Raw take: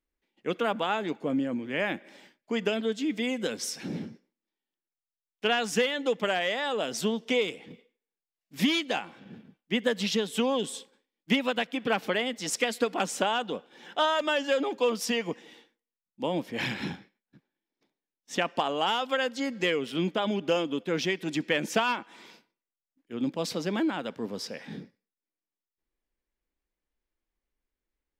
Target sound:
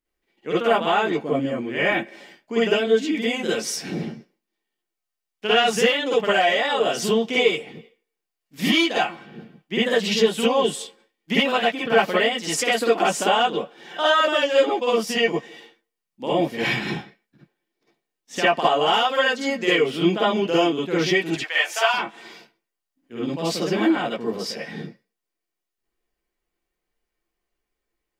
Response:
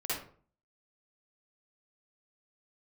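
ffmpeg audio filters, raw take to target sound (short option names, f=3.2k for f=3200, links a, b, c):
-filter_complex "[0:a]asettb=1/sr,asplit=3[a][b][c];[a]atrim=end=13.974[d];[b]atrim=start=13.97:end=15.28,asetpts=PTS-STARTPTS,afade=t=in:d=0.004:c=qsin,afade=t=out:st=1.306:d=0.004:c=qsin,agate=range=-33dB:threshold=-28dB:ratio=3:detection=peak[e];[c]atrim=start=15.276[f];[d][e]acrossfade=d=0.004:c1=hsin:c2=qsin[g];[g][f]acrossfade=d=0.004:c1=qsin:c2=hsin,asettb=1/sr,asplit=3[h][i][j];[h]atrim=end=21.364[k];[i]atrim=start=21.36:end=21.94,asetpts=PTS-STARTPTS,afade=t=in:d=0.004:c=qsin,afade=t=out:st=0.576:d=0.004:c=qsin,highpass=f=710:w=0.5412,highpass=f=710:w=1.3066[l];[j]atrim=start=21.936[m];[k][l]acrossfade=d=0.004:c1=hsin:c2=qsin[n];[n][m]acrossfade=d=0.004:c1=qsin:c2=hsin[o];[1:a]atrim=start_sample=2205,atrim=end_sample=3528[p];[o][p]afir=irnorm=-1:irlink=0,volume=5dB"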